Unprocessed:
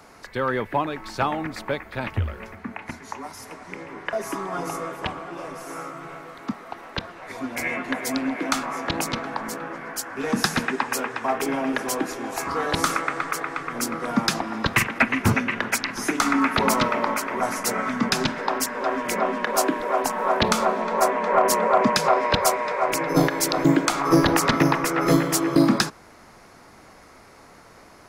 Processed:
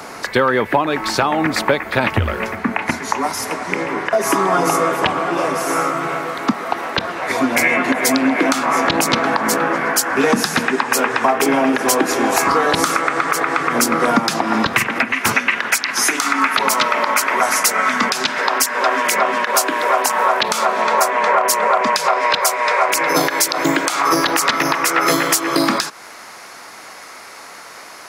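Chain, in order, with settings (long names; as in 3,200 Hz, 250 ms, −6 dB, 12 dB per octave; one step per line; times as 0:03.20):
high-pass filter 210 Hz 6 dB per octave, from 0:15.12 1,400 Hz
downward compressor 12 to 1, threshold −28 dBFS, peak gain reduction 15 dB
boost into a limiter +18 dB
level −1 dB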